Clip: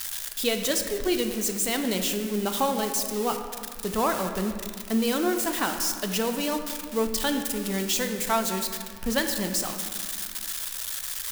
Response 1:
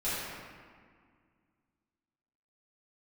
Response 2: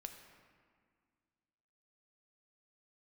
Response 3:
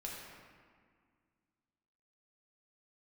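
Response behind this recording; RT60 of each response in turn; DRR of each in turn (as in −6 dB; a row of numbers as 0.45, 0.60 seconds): 2; 1.9, 1.9, 1.9 seconds; −13.5, 5.0, −4.0 decibels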